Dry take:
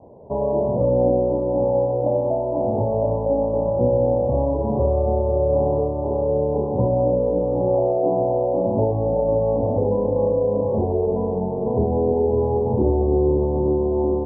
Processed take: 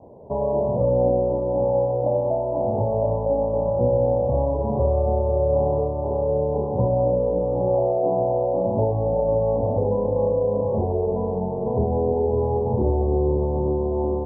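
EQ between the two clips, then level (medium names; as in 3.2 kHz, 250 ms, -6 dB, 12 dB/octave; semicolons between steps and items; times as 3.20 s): dynamic bell 300 Hz, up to -6 dB, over -35 dBFS, Q 1.7; 0.0 dB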